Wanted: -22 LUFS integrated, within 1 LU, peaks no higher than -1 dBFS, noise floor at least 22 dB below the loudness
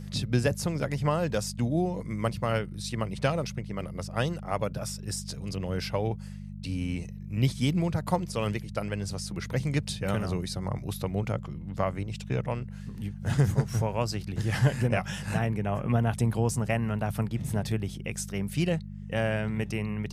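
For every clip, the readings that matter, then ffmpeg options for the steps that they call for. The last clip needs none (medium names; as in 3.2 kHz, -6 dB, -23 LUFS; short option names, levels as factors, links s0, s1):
hum 50 Hz; highest harmonic 200 Hz; hum level -38 dBFS; loudness -30.0 LUFS; peak level -11.5 dBFS; loudness target -22.0 LUFS
-> -af "bandreject=f=50:t=h:w=4,bandreject=f=100:t=h:w=4,bandreject=f=150:t=h:w=4,bandreject=f=200:t=h:w=4"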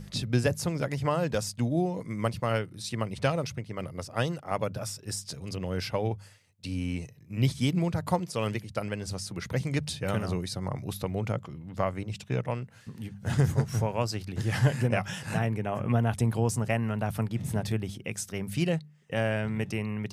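hum not found; loudness -30.5 LUFS; peak level -11.5 dBFS; loudness target -22.0 LUFS
-> -af "volume=2.66"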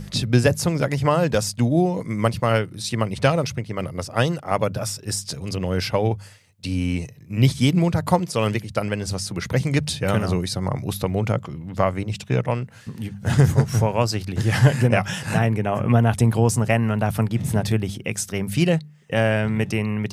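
loudness -22.0 LUFS; peak level -3.0 dBFS; noise floor -44 dBFS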